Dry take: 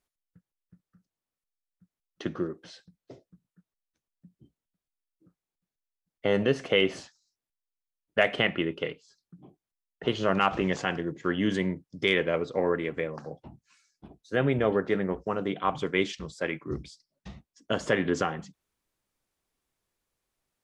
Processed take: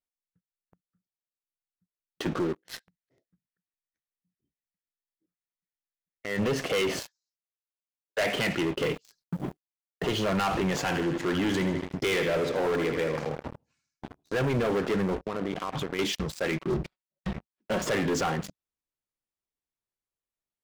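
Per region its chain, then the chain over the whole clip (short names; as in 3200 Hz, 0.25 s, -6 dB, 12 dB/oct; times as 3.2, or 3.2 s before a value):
2.59–6.39 bell 1900 Hz +14 dB 0.46 oct + compressor 4:1, threshold -33 dBFS + auto swell 0.1 s
6.99–8.23 steep high-pass 370 Hz + comb 1.9 ms, depth 30%
8.77–10.05 G.711 law mismatch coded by mu + low shelf 390 Hz +3.5 dB
10.78–14.45 bell 210 Hz -5 dB 0.24 oct + feedback echo 79 ms, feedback 51%, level -12 dB
15.19–15.99 air absorption 190 m + compressor 20:1, threshold -34 dBFS
16.51–17.82 switching dead time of 0.09 ms + LPF 2700 Hz + comb 5.4 ms, depth 66%
whole clip: sample leveller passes 5; limiter -17 dBFS; gain -5.5 dB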